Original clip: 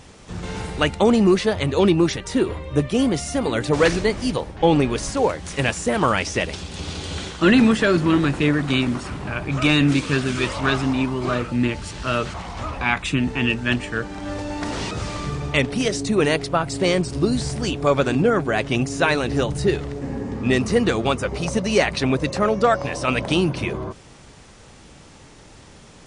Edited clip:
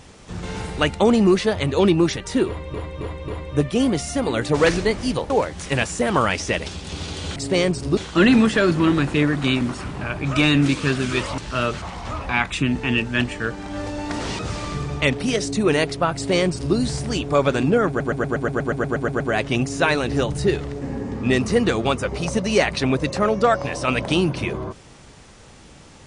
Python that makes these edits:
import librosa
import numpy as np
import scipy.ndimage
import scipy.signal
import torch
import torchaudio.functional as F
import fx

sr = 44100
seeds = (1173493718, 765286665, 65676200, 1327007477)

y = fx.edit(x, sr, fx.repeat(start_s=2.47, length_s=0.27, count=4),
    fx.cut(start_s=4.49, length_s=0.68),
    fx.cut(start_s=10.64, length_s=1.26),
    fx.duplicate(start_s=16.66, length_s=0.61, to_s=7.23),
    fx.stutter(start_s=18.4, slice_s=0.12, count=12), tone=tone)